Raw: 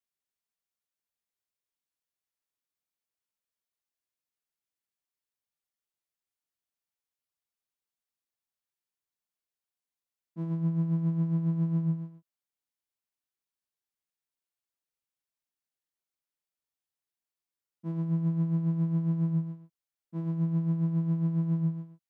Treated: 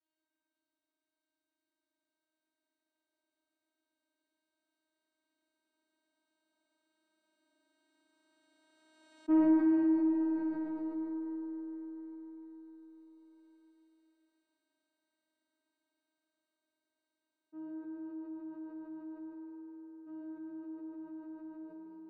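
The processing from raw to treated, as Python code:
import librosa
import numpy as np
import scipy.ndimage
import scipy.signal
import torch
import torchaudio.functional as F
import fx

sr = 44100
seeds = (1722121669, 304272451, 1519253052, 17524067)

p1 = fx.tape_stop_end(x, sr, length_s=0.64)
p2 = fx.doppler_pass(p1, sr, speed_mps=36, closest_m=2.4, pass_at_s=9.33)
p3 = fx.peak_eq(p2, sr, hz=180.0, db=-8.0, octaves=0.51)
p4 = fx.fold_sine(p3, sr, drive_db=6, ceiling_db=-29.5)
p5 = p3 + (p4 * librosa.db_to_amplitude(-6.0))
p6 = fx.air_absorb(p5, sr, metres=60.0)
p7 = fx.wow_flutter(p6, sr, seeds[0], rate_hz=2.1, depth_cents=21.0)
p8 = fx.vocoder(p7, sr, bands=8, carrier='saw', carrier_hz=314.0)
p9 = fx.cheby_harmonics(p8, sr, harmonics=(4,), levels_db=(-29,), full_scale_db=-23.5)
p10 = fx.doubler(p9, sr, ms=38.0, db=-5.0)
p11 = p10 + fx.room_flutter(p10, sr, wall_m=9.6, rt60_s=1.3, dry=0)
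p12 = fx.rev_schroeder(p11, sr, rt60_s=2.8, comb_ms=28, drr_db=0.0)
y = fx.env_flatten(p12, sr, amount_pct=50)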